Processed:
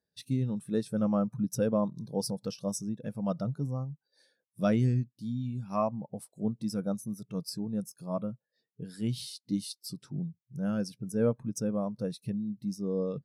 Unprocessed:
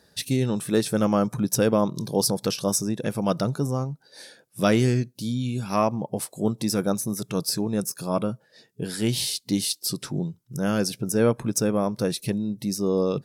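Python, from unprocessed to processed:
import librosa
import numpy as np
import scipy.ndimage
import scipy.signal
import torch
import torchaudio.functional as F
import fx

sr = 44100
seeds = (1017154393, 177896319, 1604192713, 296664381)

y = fx.dynamic_eq(x, sr, hz=370.0, q=2.7, threshold_db=-39.0, ratio=4.0, max_db=-6)
y = fx.spectral_expand(y, sr, expansion=1.5)
y = F.gain(torch.from_numpy(y), -6.0).numpy()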